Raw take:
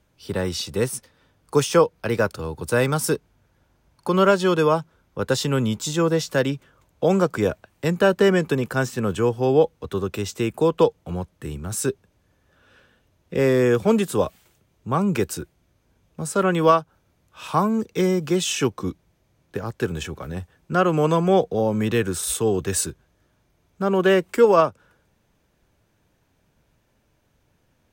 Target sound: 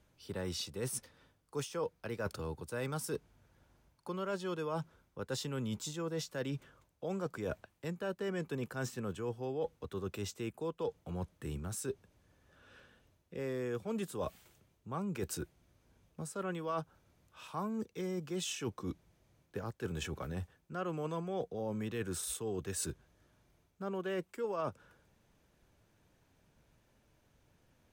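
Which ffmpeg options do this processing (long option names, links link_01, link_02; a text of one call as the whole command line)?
ffmpeg -i in.wav -af "areverse,acompressor=threshold=-32dB:ratio=5,areverse,volume=-4.5dB" -ar 48000 -c:a sbc -b:a 192k out.sbc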